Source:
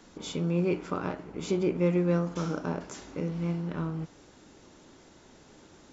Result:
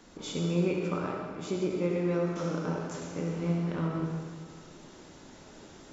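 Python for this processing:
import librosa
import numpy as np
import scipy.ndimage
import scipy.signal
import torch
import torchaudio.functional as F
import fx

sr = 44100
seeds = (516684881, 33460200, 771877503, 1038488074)

y = fx.rev_freeverb(x, sr, rt60_s=1.9, hf_ratio=0.95, predelay_ms=25, drr_db=0.5)
y = fx.rider(y, sr, range_db=5, speed_s=2.0)
y = fx.end_taper(y, sr, db_per_s=140.0)
y = y * 10.0 ** (-3.5 / 20.0)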